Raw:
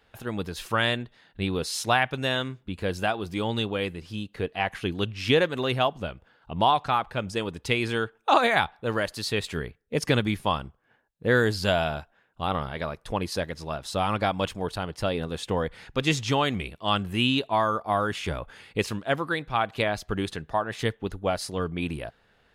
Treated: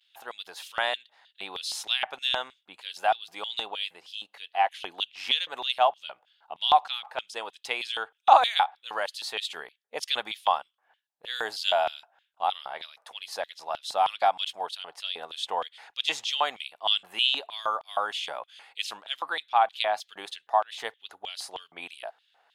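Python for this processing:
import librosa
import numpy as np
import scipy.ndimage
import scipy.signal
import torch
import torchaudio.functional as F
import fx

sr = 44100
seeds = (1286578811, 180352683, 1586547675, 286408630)

y = fx.vibrato(x, sr, rate_hz=0.31, depth_cents=22.0)
y = fx.filter_lfo_highpass(y, sr, shape='square', hz=3.2, low_hz=780.0, high_hz=3300.0, q=3.7)
y = F.gain(torch.from_numpy(y), -4.5).numpy()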